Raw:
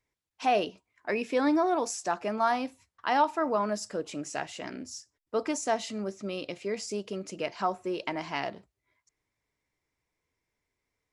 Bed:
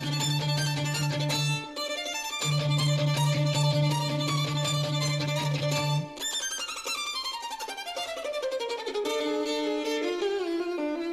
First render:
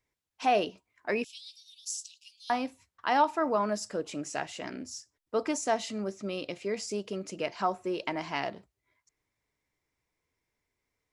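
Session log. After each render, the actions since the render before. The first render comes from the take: 1.24–2.50 s: steep high-pass 2.9 kHz 72 dB/octave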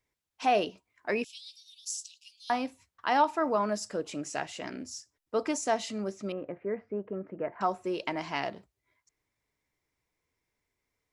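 6.32–7.61 s: Chebyshev low-pass 1.8 kHz, order 4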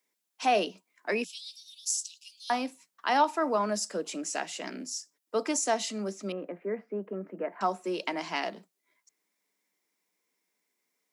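steep high-pass 170 Hz 96 dB/octave; treble shelf 4.7 kHz +9 dB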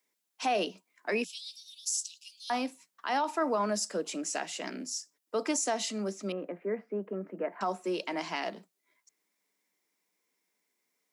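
peak limiter -20.5 dBFS, peak gain reduction 8.5 dB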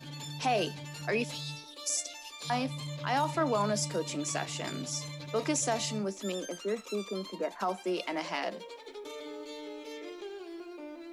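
add bed -14 dB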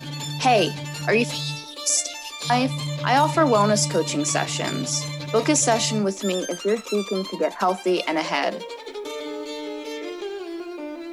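trim +11 dB

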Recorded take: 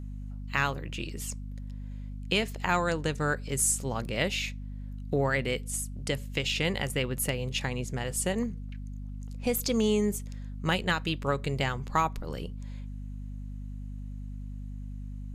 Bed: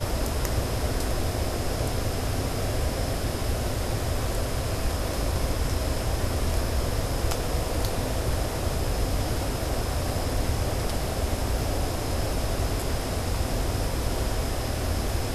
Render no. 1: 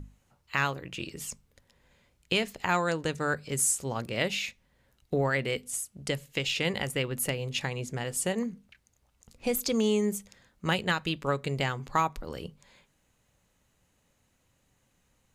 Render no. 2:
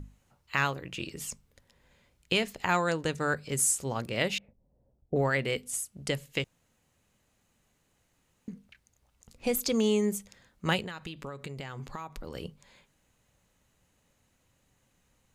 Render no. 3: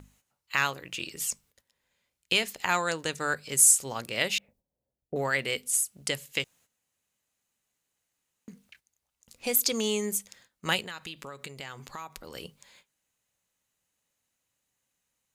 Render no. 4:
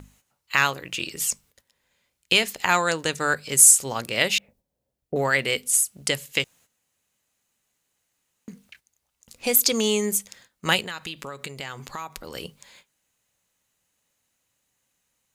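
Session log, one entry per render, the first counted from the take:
hum notches 50/100/150/200/250 Hz
4.38–5.16 s: Chebyshev low-pass 670 Hz, order 3; 6.44–8.48 s: room tone; 10.85–12.35 s: compression 12:1, threshold -35 dBFS
gate -59 dBFS, range -12 dB; tilt EQ +2.5 dB/octave
trim +6 dB; peak limiter -2 dBFS, peak gain reduction 1 dB

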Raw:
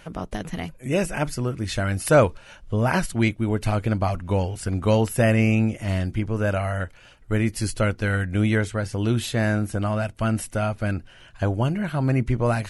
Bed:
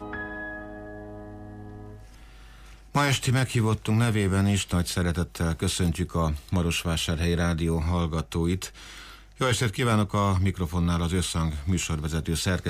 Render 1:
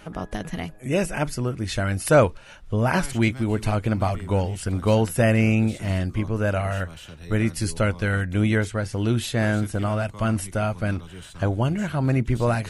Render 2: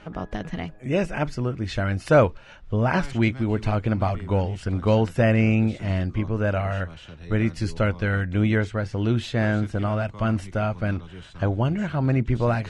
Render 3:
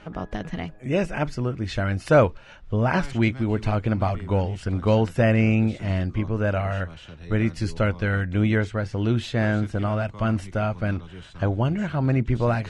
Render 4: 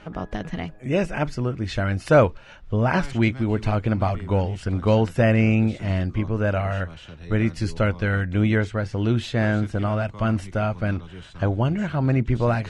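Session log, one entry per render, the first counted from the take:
add bed -15.5 dB
distance through air 120 m
no audible change
trim +1 dB

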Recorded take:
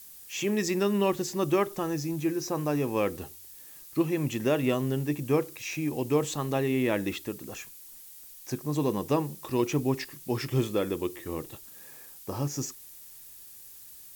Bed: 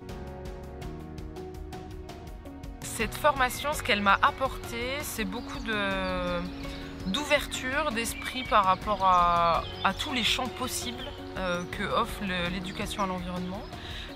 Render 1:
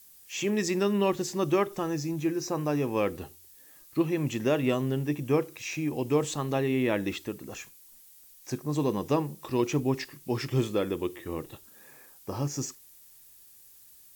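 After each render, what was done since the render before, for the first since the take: noise print and reduce 6 dB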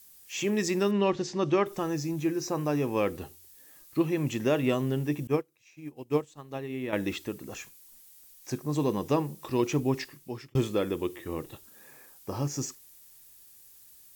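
0.91–1.66 s: low-pass 6 kHz 24 dB/octave; 5.27–6.93 s: upward expansion 2.5:1, over -37 dBFS; 9.99–10.55 s: fade out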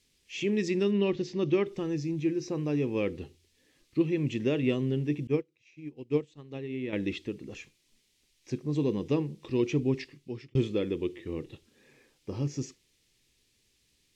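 low-pass 3.8 kHz 12 dB/octave; high-order bell 1 kHz -11.5 dB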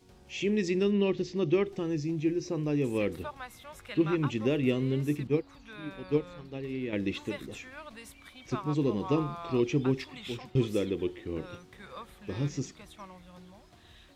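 add bed -17.5 dB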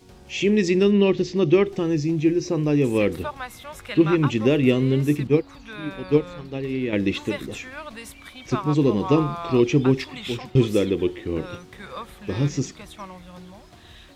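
trim +9 dB

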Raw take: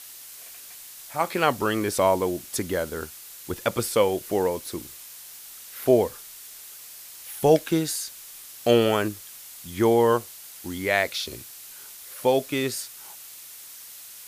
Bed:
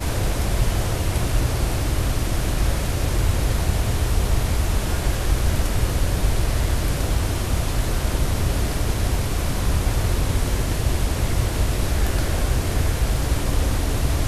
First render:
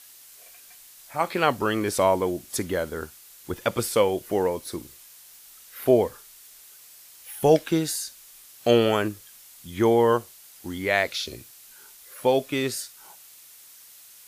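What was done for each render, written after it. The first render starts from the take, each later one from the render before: noise print and reduce 6 dB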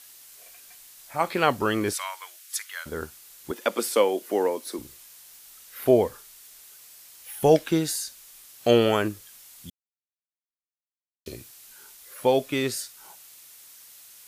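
1.93–2.86 s: high-pass 1.3 kHz 24 dB/octave; 3.51–4.79 s: steep high-pass 220 Hz; 9.70–11.26 s: mute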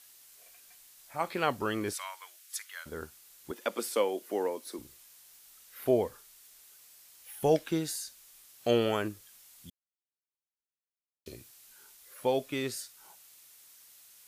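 trim -7.5 dB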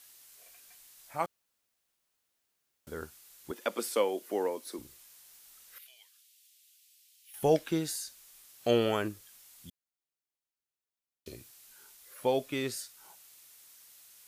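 1.26–2.87 s: room tone; 5.78–7.34 s: ladder high-pass 2.3 kHz, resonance 35%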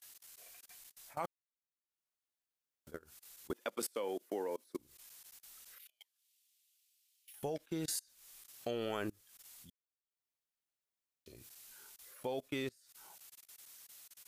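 level held to a coarse grid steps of 19 dB; transient shaper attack +2 dB, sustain -11 dB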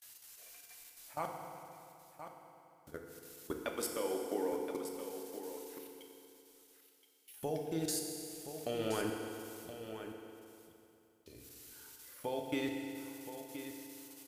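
on a send: delay 1023 ms -10.5 dB; on the sum: FDN reverb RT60 2.8 s, high-frequency decay 0.85×, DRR 1.5 dB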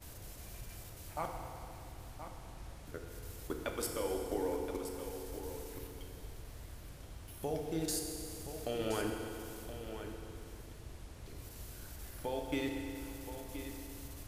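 add bed -28.5 dB

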